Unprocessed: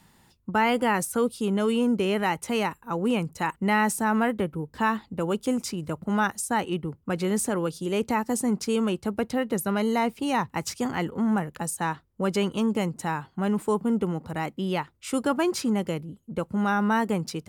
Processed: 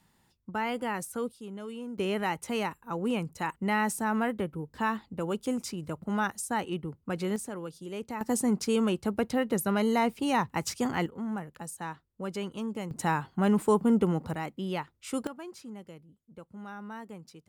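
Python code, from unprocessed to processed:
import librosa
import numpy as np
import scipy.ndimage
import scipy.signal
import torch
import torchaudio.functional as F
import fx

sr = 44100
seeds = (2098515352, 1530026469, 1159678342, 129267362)

y = fx.gain(x, sr, db=fx.steps((0.0, -9.0), (1.32, -16.0), (1.98, -5.0), (7.36, -11.5), (8.21, -1.5), (11.06, -10.0), (12.91, 1.0), (14.34, -5.5), (15.27, -18.5)))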